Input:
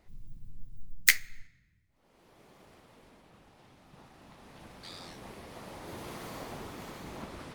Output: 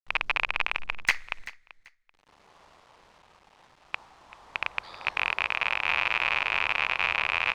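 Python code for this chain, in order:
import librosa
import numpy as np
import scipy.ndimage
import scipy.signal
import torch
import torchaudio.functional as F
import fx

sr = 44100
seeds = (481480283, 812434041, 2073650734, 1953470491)

p1 = fx.rattle_buzz(x, sr, strikes_db=-49.0, level_db=-9.0)
p2 = fx.graphic_eq_10(p1, sr, hz=(125, 250, 1000, 8000), db=(-7, -11, 10, -6))
p3 = fx.rider(p2, sr, range_db=4, speed_s=0.5)
p4 = p2 + (p3 * 10.0 ** (-1.0 / 20.0))
p5 = fx.quant_dither(p4, sr, seeds[0], bits=8, dither='none')
p6 = fx.air_absorb(p5, sr, metres=79.0)
p7 = p6 + fx.echo_feedback(p6, sr, ms=386, feedback_pct=22, wet_db=-17.5, dry=0)
y = p7 * 10.0 ** (-7.0 / 20.0)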